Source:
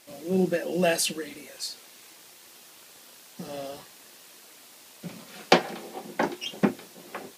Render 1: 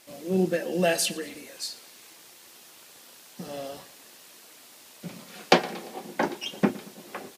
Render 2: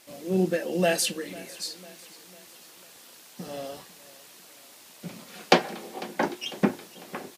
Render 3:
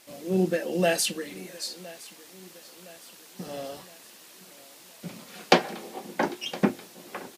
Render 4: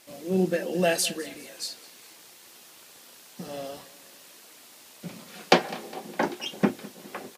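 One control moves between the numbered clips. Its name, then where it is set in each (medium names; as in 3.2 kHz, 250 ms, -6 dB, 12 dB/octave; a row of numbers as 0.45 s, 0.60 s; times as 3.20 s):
feedback delay, time: 115 ms, 499 ms, 1014 ms, 205 ms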